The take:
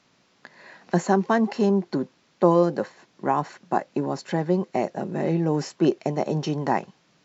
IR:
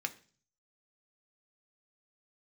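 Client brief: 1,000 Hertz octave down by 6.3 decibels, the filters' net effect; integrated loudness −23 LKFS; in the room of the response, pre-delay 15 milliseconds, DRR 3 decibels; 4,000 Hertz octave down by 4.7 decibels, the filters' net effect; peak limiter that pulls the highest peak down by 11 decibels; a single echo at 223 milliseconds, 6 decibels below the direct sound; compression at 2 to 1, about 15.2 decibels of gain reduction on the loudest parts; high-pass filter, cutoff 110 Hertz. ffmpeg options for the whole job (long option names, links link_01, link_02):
-filter_complex "[0:a]highpass=110,equalizer=frequency=1000:width_type=o:gain=-8.5,equalizer=frequency=4000:width_type=o:gain=-6,acompressor=threshold=-44dB:ratio=2,alimiter=level_in=8.5dB:limit=-24dB:level=0:latency=1,volume=-8.5dB,aecho=1:1:223:0.501,asplit=2[link_01][link_02];[1:a]atrim=start_sample=2205,adelay=15[link_03];[link_02][link_03]afir=irnorm=-1:irlink=0,volume=-5dB[link_04];[link_01][link_04]amix=inputs=2:normalize=0,volume=18.5dB"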